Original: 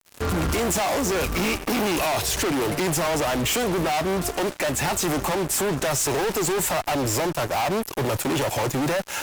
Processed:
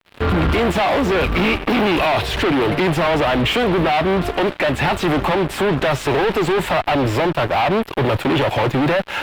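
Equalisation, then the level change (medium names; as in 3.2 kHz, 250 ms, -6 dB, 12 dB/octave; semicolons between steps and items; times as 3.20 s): distance through air 480 m; treble shelf 2.5 kHz +10.5 dB; peaking EQ 3.5 kHz +3 dB; +7.5 dB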